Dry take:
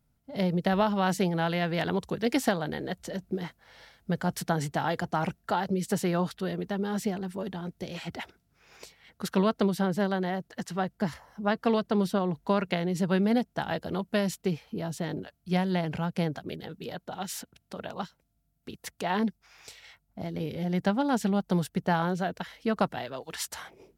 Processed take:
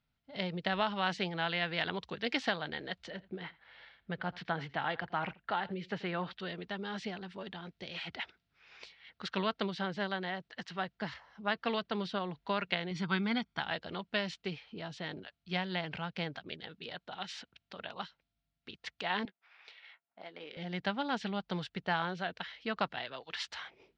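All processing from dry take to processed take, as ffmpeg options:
-filter_complex "[0:a]asettb=1/sr,asplit=3[s0][s1][s2];[s0]atrim=end=3.104[s3];[s1]atrim=start=3.1:end=6.33,asetpts=PTS-STARTPTS,afade=t=in:d=0.004:c=qsin,afade=t=out:st=3.226:d=0.004:c=qsin,lowpass=3000,aecho=1:1:85:0.0891,atrim=end_sample=142443[s4];[s2]atrim=start=6.326[s5];[s3][s4]acrossfade=d=0.004:c1=hsin:c2=qsin[s6];[s6][s5]acrossfade=d=0.004:c1=qsin:c2=hsin,asettb=1/sr,asplit=3[s7][s8][s9];[s7]atrim=end=12.914[s10];[s8]atrim=start=12.91:end=13.6,asetpts=PTS-STARTPTS,afade=t=in:d=0.004:c=qsin,afade=t=out:st=0.686:d=0.004:c=qsin,lowpass=11000,equalizer=f=1600:w=5.9:g=9,aecho=1:1:0.9:0.69,atrim=end_sample=30429[s11];[s9]atrim=start=13.596[s12];[s10][s11]acrossfade=d=0.004:c1=hsin:c2=qsin[s13];[s13][s12]acrossfade=d=0.004:c1=qsin:c2=hsin,asettb=1/sr,asplit=3[s14][s15][s16];[s14]atrim=end=19.254[s17];[s15]atrim=start=19.25:end=20.57,asetpts=PTS-STARTPTS,afade=t=in:d=0.004:c=qsin,afade=t=out:st=1.316:d=0.004:c=qsin,highpass=450,adynamicsmooth=sensitivity=7:basefreq=2400,asplit=2[s18][s19];[s19]adelay=16,volume=0.224[s20];[s18][s20]amix=inputs=2:normalize=0,atrim=end_sample=58212[s21];[s16]atrim=start=20.566[s22];[s17][s21]acrossfade=d=0.004:c1=hsin:c2=qsin[s23];[s23][s22]acrossfade=d=0.004:c1=qsin:c2=hsin,lowpass=f=3900:w=0.5412,lowpass=f=3900:w=1.3066,tiltshelf=f=1200:g=-8.5,volume=0.668"

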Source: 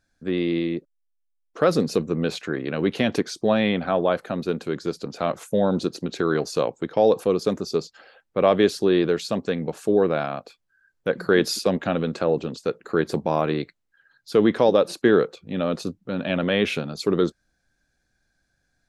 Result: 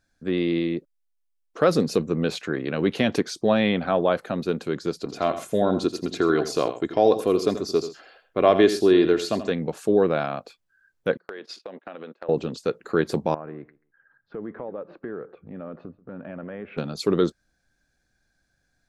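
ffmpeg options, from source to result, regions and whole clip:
-filter_complex "[0:a]asettb=1/sr,asplit=3[s0][s1][s2];[s0]atrim=end=5.004[s3];[s1]atrim=start=5:end=9.51,asetpts=PTS-STARTPTS,afade=t=in:d=0.004:c=qsin,afade=t=out:st=4.506:d=0.004:c=qsin,aecho=1:1:2.9:0.41,atrim=end_sample=198891,aecho=1:1:84|128:0.266|0.106,atrim=end_sample=198891[s4];[s2]atrim=start=9.506[s5];[s3][s4]acrossfade=d=0.004:c1=hsin:c2=qsin[s6];[s6][s5]acrossfade=d=0.004:c1=qsin:c2=hsin,asettb=1/sr,asplit=3[s7][s8][s9];[s7]atrim=end=11.174[s10];[s8]atrim=start=11.17:end=12.29,asetpts=PTS-STARTPTS,afade=t=in:d=0.004:c=qsin,afade=t=out:st=1.116:d=0.004:c=qsin,agate=range=0.0398:threshold=0.0398:ratio=16:release=100:detection=peak,highpass=410,lowpass=3000,acompressor=threshold=0.0224:ratio=12:attack=3.2:release=140:knee=1:detection=peak[s11];[s9]atrim=start=12.286[s12];[s10][s11]acrossfade=d=0.004:c1=hsin:c2=qsin[s13];[s13][s12]acrossfade=d=0.004:c1=qsin:c2=hsin,asettb=1/sr,asplit=3[s14][s15][s16];[s14]atrim=end=13.344[s17];[s15]atrim=start=13.34:end=16.78,asetpts=PTS-STARTPTS,afade=t=in:d=0.004:c=qsin,afade=t=out:st=3.436:d=0.004:c=qsin,lowpass=f=1800:w=0.5412,lowpass=f=1800:w=1.3066,acompressor=threshold=0.0112:ratio=2.5:attack=3.2:release=140:knee=1:detection=peak,aecho=1:1:135|270:0.0841|0.0135,atrim=end_sample=151704[s18];[s16]atrim=start=16.776[s19];[s17][s18]acrossfade=d=0.004:c1=hsin:c2=qsin[s20];[s20][s19]acrossfade=d=0.004:c1=qsin:c2=hsin"

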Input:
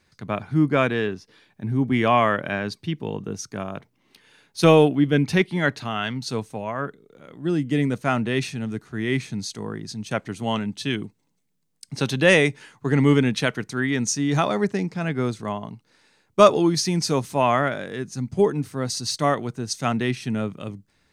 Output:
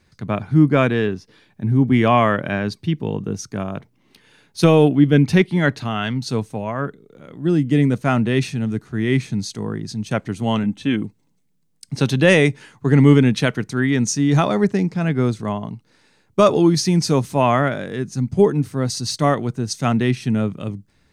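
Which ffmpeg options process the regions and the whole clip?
-filter_complex "[0:a]asettb=1/sr,asplit=3[s0][s1][s2];[s0]atrim=end=10.634[s3];[s1]atrim=start=10.63:end=11.04,asetpts=PTS-STARTPTS,afade=t=in:d=0.004:c=qsin,afade=t=out:st=0.406:d=0.004:c=qsin,acrossover=split=5700[s4][s5];[s5]acompressor=threshold=0.002:ratio=4:attack=1:release=60[s6];[s4][s6]amix=inputs=2:normalize=0,equalizer=f=4700:w=1.9:g=-12,aecho=1:1:3.8:0.48,atrim=end_sample=18081[s7];[s2]atrim=start=11.036[s8];[s3][s7]acrossfade=d=0.004:c1=hsin:c2=qsin[s9];[s9][s8]acrossfade=d=0.004:c1=qsin:c2=hsin,lowshelf=f=330:g=7,alimiter=level_in=1.41:limit=0.891:release=50:level=0:latency=1,volume=0.841"

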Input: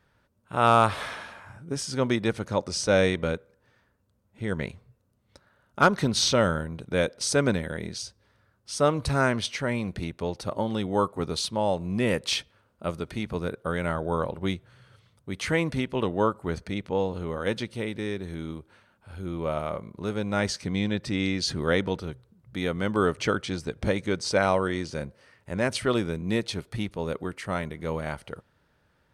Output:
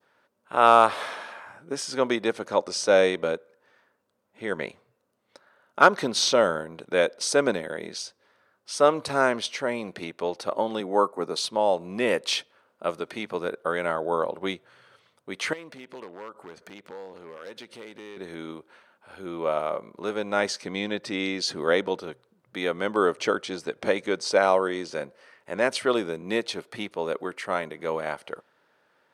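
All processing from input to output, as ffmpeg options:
-filter_complex "[0:a]asettb=1/sr,asplit=3[s0][s1][s2];[s0]atrim=end=10.804[s3];[s1]atrim=start=10.8:end=11.36,asetpts=PTS-STARTPTS,afade=t=in:d=0.004:c=qsin,afade=t=out:st=0.556:d=0.004:c=qsin,highpass=f=120:w=0.5412,highpass=f=120:w=1.3066,equalizer=f=3200:w=2.5:g=-13[s4];[s2]atrim=start=11.356[s5];[s3][s4]acrossfade=d=0.004:c1=hsin:c2=qsin[s6];[s6][s5]acrossfade=d=0.004:c1=qsin:c2=hsin,asettb=1/sr,asplit=3[s7][s8][s9];[s7]atrim=end=15.534[s10];[s8]atrim=start=15.53:end=18.17,asetpts=PTS-STARTPTS,afade=t=in:d=0.004:c=qsin,afade=t=out:st=2.636:d=0.004:c=qsin,acompressor=threshold=0.0112:ratio=5:attack=3.2:release=140:knee=1:detection=peak,aeval=exprs='0.0188*(abs(mod(val(0)/0.0188+3,4)-2)-1)':c=same[s11];[s9]atrim=start=18.166[s12];[s10][s11]acrossfade=d=0.004:c1=hsin:c2=qsin[s13];[s13][s12]acrossfade=d=0.004:c1=qsin:c2=hsin,adynamicequalizer=threshold=0.01:dfrequency=1900:dqfactor=0.84:tfrequency=1900:tqfactor=0.84:attack=5:release=100:ratio=0.375:range=3:mode=cutabove:tftype=bell,highpass=390,highshelf=f=4100:g=-6.5,volume=1.78"

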